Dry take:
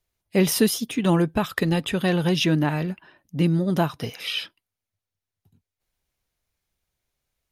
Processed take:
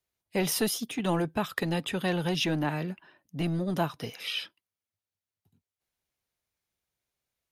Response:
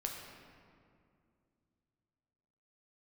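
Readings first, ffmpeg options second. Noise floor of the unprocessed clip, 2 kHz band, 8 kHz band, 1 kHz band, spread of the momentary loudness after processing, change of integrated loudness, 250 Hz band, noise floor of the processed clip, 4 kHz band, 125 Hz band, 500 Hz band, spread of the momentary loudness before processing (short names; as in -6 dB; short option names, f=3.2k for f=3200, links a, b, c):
under -85 dBFS, -5.0 dB, -5.0 dB, -4.5 dB, 8 LU, -7.0 dB, -8.5 dB, under -85 dBFS, -5.0 dB, -8.5 dB, -7.0 dB, 10 LU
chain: -filter_complex "[0:a]highpass=f=130:p=1,acrossover=split=410|1000[a][b][c];[a]asoftclip=type=hard:threshold=-22.5dB[d];[d][b][c]amix=inputs=3:normalize=0,volume=-5dB"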